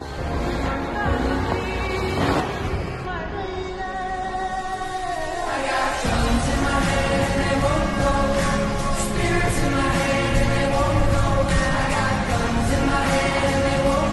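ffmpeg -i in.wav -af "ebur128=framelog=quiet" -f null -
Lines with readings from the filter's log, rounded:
Integrated loudness:
  I:         -22.1 LUFS
  Threshold: -32.1 LUFS
Loudness range:
  LRA:         5.3 LU
  Threshold: -42.2 LUFS
  LRA low:   -25.9 LUFS
  LRA high:  -20.6 LUFS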